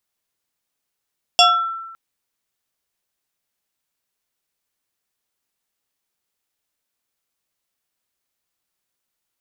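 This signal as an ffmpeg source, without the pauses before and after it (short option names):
-f lavfi -i "aevalsrc='0.473*pow(10,-3*t/1.08)*sin(2*PI*1340*t+2.6*pow(10,-3*t/0.51)*sin(2*PI*1.53*1340*t))':d=0.56:s=44100"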